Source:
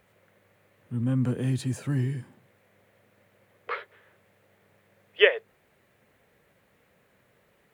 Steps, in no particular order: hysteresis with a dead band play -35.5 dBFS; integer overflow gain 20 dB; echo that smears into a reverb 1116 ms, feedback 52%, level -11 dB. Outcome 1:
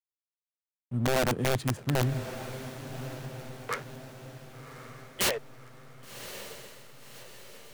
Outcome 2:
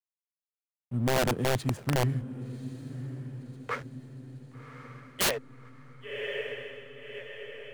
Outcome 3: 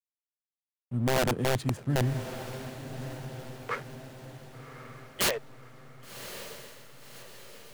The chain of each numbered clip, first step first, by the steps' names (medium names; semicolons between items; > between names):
integer overflow > hysteresis with a dead band > echo that smears into a reverb; hysteresis with a dead band > echo that smears into a reverb > integer overflow; hysteresis with a dead band > integer overflow > echo that smears into a reverb